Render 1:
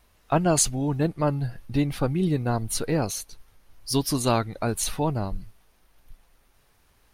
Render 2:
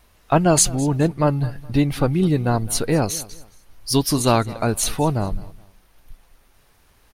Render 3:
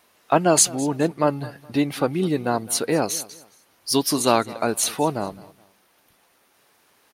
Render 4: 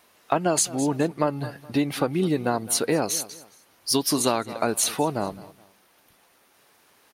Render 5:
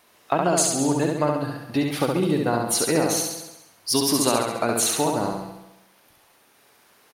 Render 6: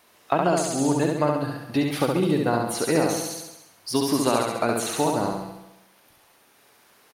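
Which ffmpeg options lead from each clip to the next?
-af "aecho=1:1:210|420:0.1|0.03,volume=1.88"
-af "highpass=250"
-af "acompressor=threshold=0.112:ratio=6,volume=1.12"
-af "aecho=1:1:68|136|204|272|340|408|476|544:0.708|0.389|0.214|0.118|0.0648|0.0356|0.0196|0.0108"
-filter_complex "[0:a]acrossover=split=2700[s0][s1];[s1]acompressor=threshold=0.0355:ratio=4:attack=1:release=60[s2];[s0][s2]amix=inputs=2:normalize=0"

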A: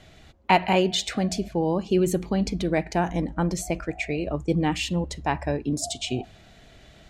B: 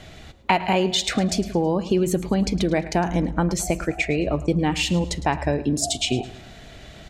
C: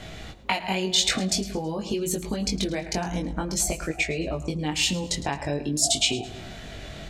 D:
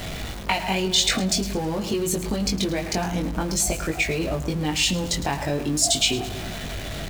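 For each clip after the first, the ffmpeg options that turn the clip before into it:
-af "acompressor=threshold=0.0447:ratio=3,aecho=1:1:108|216|324:0.15|0.0584|0.0228,volume=2.51"
-filter_complex "[0:a]acrossover=split=3100[s0][s1];[s0]acompressor=threshold=0.0316:ratio=5[s2];[s2][s1]amix=inputs=2:normalize=0,flanger=delay=18.5:depth=3.1:speed=0.48,volume=2.11"
-af "aeval=exprs='val(0)+0.5*0.0251*sgn(val(0))':c=same,aeval=exprs='val(0)+0.0112*(sin(2*PI*50*n/s)+sin(2*PI*2*50*n/s)/2+sin(2*PI*3*50*n/s)/3+sin(2*PI*4*50*n/s)/4+sin(2*PI*5*50*n/s)/5)':c=same,volume=1.12"

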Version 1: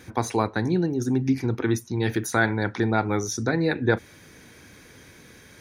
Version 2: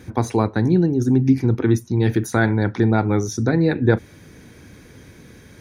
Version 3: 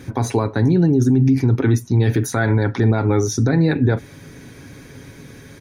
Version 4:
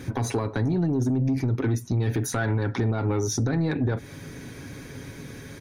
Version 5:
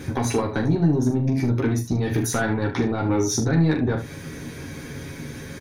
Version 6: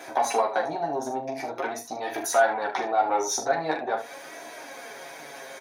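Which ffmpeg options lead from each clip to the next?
-af "lowshelf=f=480:g=10,volume=0.891"
-af "aecho=1:1:7.3:0.42,alimiter=limit=0.266:level=0:latency=1:release=51,volume=1.58"
-af "acompressor=threshold=0.0891:ratio=3,asoftclip=type=tanh:threshold=0.141"
-af "aecho=1:1:13|42|75:0.631|0.422|0.316,volume=1.33"
-af "flanger=delay=3:depth=4.6:regen=49:speed=0.45:shape=sinusoidal,highpass=f=700:t=q:w=4.9,volume=1.26"

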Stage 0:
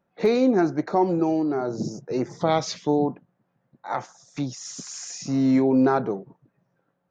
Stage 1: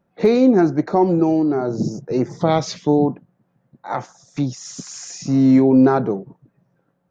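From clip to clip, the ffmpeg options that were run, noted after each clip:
-af "lowshelf=f=390:g=7,volume=1.26"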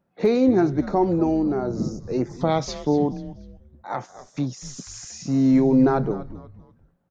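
-filter_complex "[0:a]asplit=4[s0][s1][s2][s3];[s1]adelay=243,afreqshift=-120,volume=0.188[s4];[s2]adelay=486,afreqshift=-240,volume=0.07[s5];[s3]adelay=729,afreqshift=-360,volume=0.0257[s6];[s0][s4][s5][s6]amix=inputs=4:normalize=0,volume=0.596"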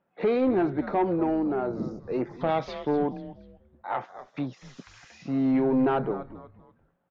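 -filter_complex "[0:a]asplit=2[s0][s1];[s1]highpass=f=720:p=1,volume=5.62,asoftclip=type=tanh:threshold=0.398[s2];[s0][s2]amix=inputs=2:normalize=0,lowpass=f=1600:p=1,volume=0.501,highshelf=f=4600:t=q:w=1.5:g=-12.5,volume=0.473"

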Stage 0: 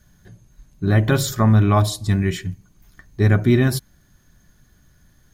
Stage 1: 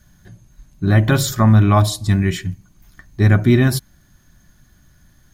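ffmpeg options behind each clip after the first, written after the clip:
-af "equalizer=f=450:w=5.6:g=-9,volume=1.41"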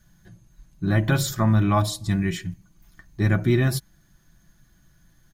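-af "aecho=1:1:6:0.4,volume=0.473"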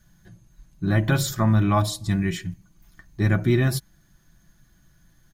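-af anull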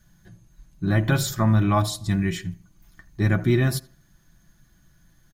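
-filter_complex "[0:a]asplit=2[s0][s1];[s1]adelay=81,lowpass=f=2600:p=1,volume=0.0944,asplit=2[s2][s3];[s3]adelay=81,lowpass=f=2600:p=1,volume=0.34,asplit=2[s4][s5];[s5]adelay=81,lowpass=f=2600:p=1,volume=0.34[s6];[s0][s2][s4][s6]amix=inputs=4:normalize=0"

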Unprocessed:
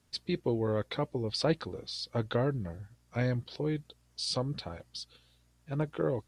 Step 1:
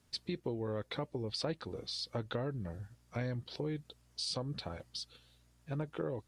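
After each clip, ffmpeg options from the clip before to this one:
-af "acompressor=threshold=0.0158:ratio=3"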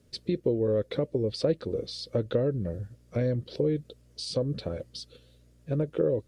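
-af "lowshelf=f=660:t=q:w=3:g=7,volume=1.19"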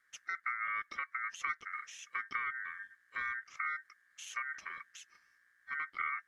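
-af "aeval=exprs='val(0)*sin(2*PI*1700*n/s)':c=same,volume=0.376"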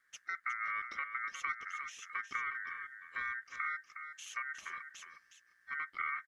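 -af "aecho=1:1:362:0.355,volume=0.891"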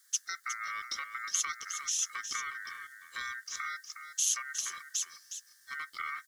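-af "aexciter=amount=13.3:drive=3.3:freq=3500"

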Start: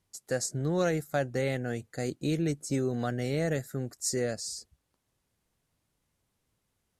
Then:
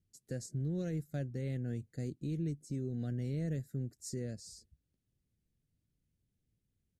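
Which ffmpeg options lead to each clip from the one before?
-af "firequalizer=gain_entry='entry(140,0);entry(1000,-29);entry(1600,-16);entry(2900,-14)':delay=0.05:min_phase=1,alimiter=level_in=1.78:limit=0.0631:level=0:latency=1:release=366,volume=0.562"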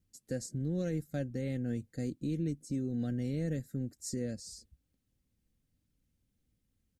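-af "aecho=1:1:3.8:0.38,volume=1.5"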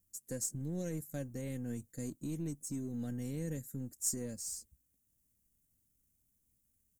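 -af "aeval=exprs='if(lt(val(0),0),0.708*val(0),val(0))':c=same,aexciter=amount=6.4:drive=3.8:freq=6200,volume=0.668"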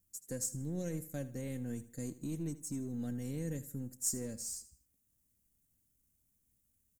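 -af "aecho=1:1:79|158|237:0.158|0.0571|0.0205"

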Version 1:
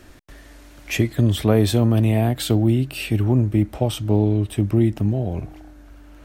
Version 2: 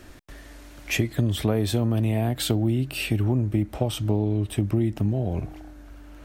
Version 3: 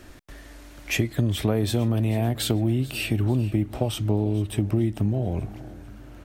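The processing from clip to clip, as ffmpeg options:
-af "acompressor=threshold=0.1:ratio=3"
-af "aecho=1:1:440|880|1320|1760:0.119|0.0547|0.0251|0.0116"

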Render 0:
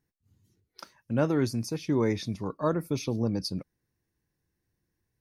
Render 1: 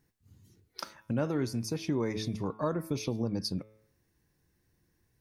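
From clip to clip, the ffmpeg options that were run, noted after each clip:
-af "bandreject=f=108.2:t=h:w=4,bandreject=f=216.4:t=h:w=4,bandreject=f=324.6:t=h:w=4,bandreject=f=432.8:t=h:w=4,bandreject=f=541:t=h:w=4,bandreject=f=649.2:t=h:w=4,bandreject=f=757.4:t=h:w=4,bandreject=f=865.6:t=h:w=4,bandreject=f=973.8:t=h:w=4,bandreject=f=1082:t=h:w=4,bandreject=f=1190.2:t=h:w=4,bandreject=f=1298.4:t=h:w=4,bandreject=f=1406.6:t=h:w=4,bandreject=f=1514.8:t=h:w=4,bandreject=f=1623:t=h:w=4,bandreject=f=1731.2:t=h:w=4,bandreject=f=1839.4:t=h:w=4,bandreject=f=1947.6:t=h:w=4,bandreject=f=2055.8:t=h:w=4,bandreject=f=2164:t=h:w=4,bandreject=f=2272.2:t=h:w=4,bandreject=f=2380.4:t=h:w=4,bandreject=f=2488.6:t=h:w=4,bandreject=f=2596.8:t=h:w=4,bandreject=f=2705:t=h:w=4,bandreject=f=2813.2:t=h:w=4,bandreject=f=2921.4:t=h:w=4,bandreject=f=3029.6:t=h:w=4,bandreject=f=3137.8:t=h:w=4,bandreject=f=3246:t=h:w=4,bandreject=f=3354.2:t=h:w=4,bandreject=f=3462.4:t=h:w=4,bandreject=f=3570.6:t=h:w=4,bandreject=f=3678.8:t=h:w=4,acompressor=threshold=0.00891:ratio=2.5,volume=2.37"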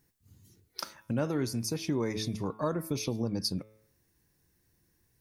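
-af "highshelf=f=5500:g=8"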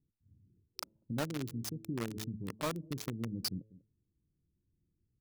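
-filter_complex "[0:a]acrossover=split=370[s0][s1];[s0]aecho=1:1:195:0.133[s2];[s1]acrusher=bits=4:mix=0:aa=0.000001[s3];[s2][s3]amix=inputs=2:normalize=0,volume=0.531"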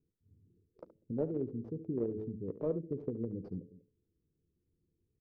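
-filter_complex "[0:a]lowpass=f=450:t=q:w=4.9,asplit=2[s0][s1];[s1]aecho=0:1:12|72:0.224|0.2[s2];[s0][s2]amix=inputs=2:normalize=0,volume=0.75"

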